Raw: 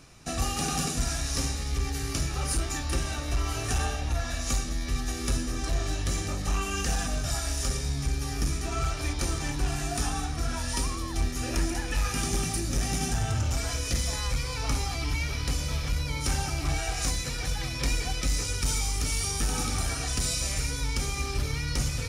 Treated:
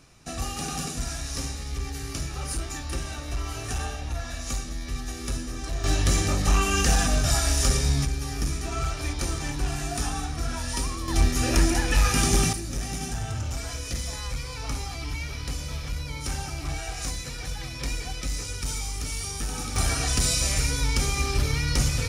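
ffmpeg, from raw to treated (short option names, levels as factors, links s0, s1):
-af "asetnsamples=n=441:p=0,asendcmd='5.84 volume volume 7dB;8.05 volume volume 0.5dB;11.08 volume volume 7dB;12.53 volume volume -3dB;19.76 volume volume 5dB',volume=0.75"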